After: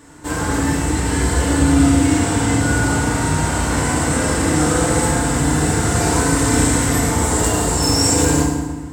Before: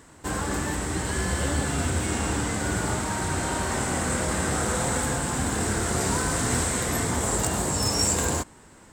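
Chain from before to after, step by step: FDN reverb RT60 1.3 s, low-frequency decay 1.55×, high-frequency decay 0.75×, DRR -4 dB; gain +2 dB

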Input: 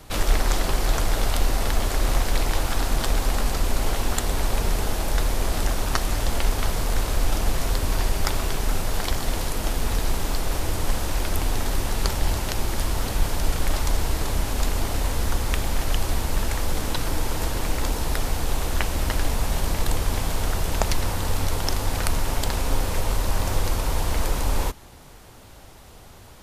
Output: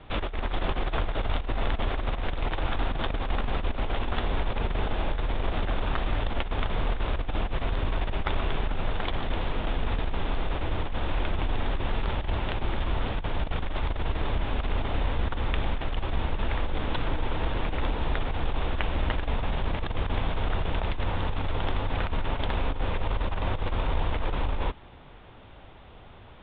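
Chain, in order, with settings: Chebyshev low-pass 3600 Hz, order 6; negative-ratio compressor -22 dBFS, ratio -0.5; gain -2.5 dB

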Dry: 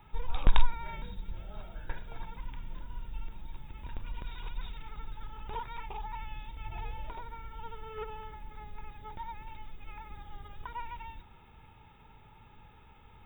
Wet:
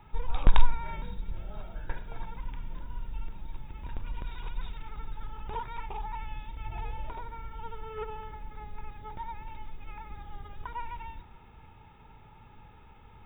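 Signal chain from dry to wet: high shelf 3400 Hz -8 dB; on a send: reverb RT60 1.7 s, pre-delay 70 ms, DRR 18 dB; on the sum: gain +3 dB

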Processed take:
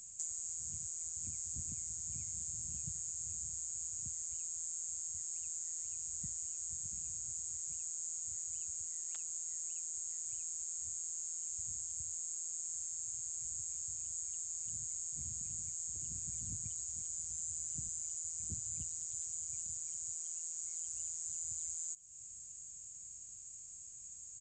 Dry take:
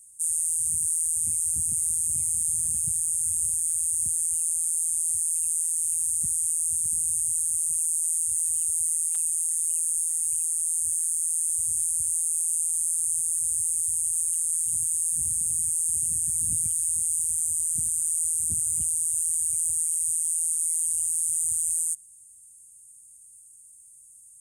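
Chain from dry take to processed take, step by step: high shelf 4600 Hz +9 dB; compressor, threshold -31 dBFS, peak gain reduction 16.5 dB; on a send: echo 1.144 s -22 dB; on the sum: downsampling 16000 Hz; gain +8 dB

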